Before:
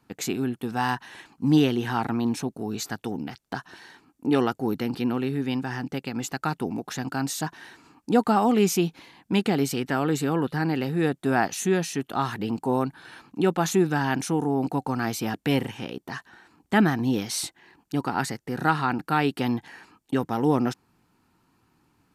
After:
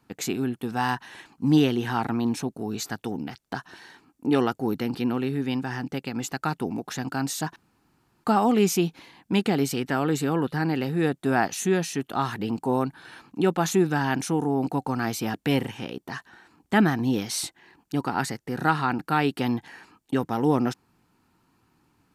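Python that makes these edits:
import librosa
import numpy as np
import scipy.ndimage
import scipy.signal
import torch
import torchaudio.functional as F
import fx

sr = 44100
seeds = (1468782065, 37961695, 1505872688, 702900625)

y = fx.edit(x, sr, fx.room_tone_fill(start_s=7.56, length_s=0.68), tone=tone)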